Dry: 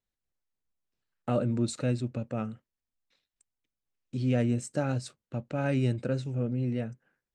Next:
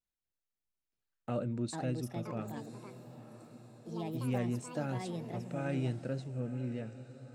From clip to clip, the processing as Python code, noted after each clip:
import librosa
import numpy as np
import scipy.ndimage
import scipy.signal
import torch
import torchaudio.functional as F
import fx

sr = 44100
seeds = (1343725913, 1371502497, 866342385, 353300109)

y = fx.echo_diffused(x, sr, ms=991, feedback_pct=54, wet_db=-14)
y = fx.vibrato(y, sr, rate_hz=0.69, depth_cents=29.0)
y = fx.echo_pitch(y, sr, ms=767, semitones=5, count=2, db_per_echo=-6.0)
y = y * 10.0 ** (-7.5 / 20.0)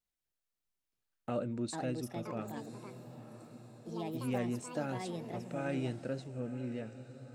y = fx.dynamic_eq(x, sr, hz=130.0, q=1.3, threshold_db=-49.0, ratio=4.0, max_db=-6)
y = y * 10.0 ** (1.0 / 20.0)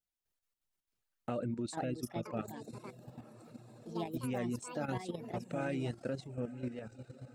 y = fx.dereverb_blind(x, sr, rt60_s=0.58)
y = fx.level_steps(y, sr, step_db=10)
y = y * 10.0 ** (4.5 / 20.0)